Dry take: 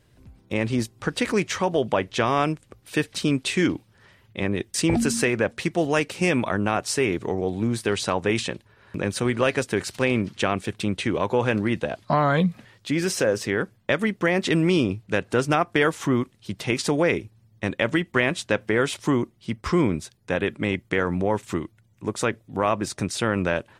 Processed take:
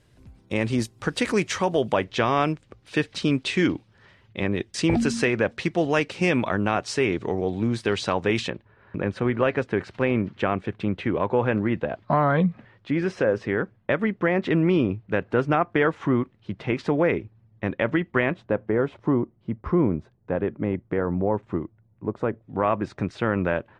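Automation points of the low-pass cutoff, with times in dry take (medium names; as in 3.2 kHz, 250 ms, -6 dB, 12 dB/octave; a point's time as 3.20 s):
11 kHz
from 2.04 s 5.1 kHz
from 8.50 s 2 kHz
from 18.34 s 1 kHz
from 22.42 s 2 kHz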